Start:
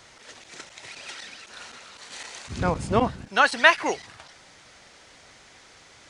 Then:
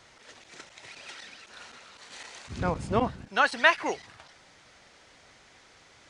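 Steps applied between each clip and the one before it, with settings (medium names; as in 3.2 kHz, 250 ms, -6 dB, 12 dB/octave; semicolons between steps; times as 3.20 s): treble shelf 6.2 kHz -5.5 dB; trim -4 dB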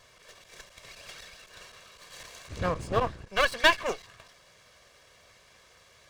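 comb filter that takes the minimum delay 1.8 ms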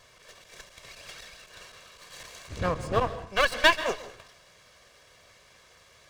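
plate-style reverb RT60 0.52 s, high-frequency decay 0.95×, pre-delay 120 ms, DRR 14 dB; trim +1 dB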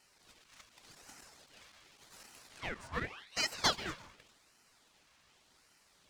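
Bessel high-pass 540 Hz; ring modulator with a swept carrier 2 kHz, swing 80%, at 0.87 Hz; trim -7 dB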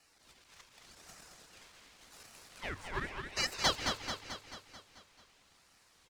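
frequency shift -100 Hz; on a send: feedback delay 219 ms, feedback 57%, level -6 dB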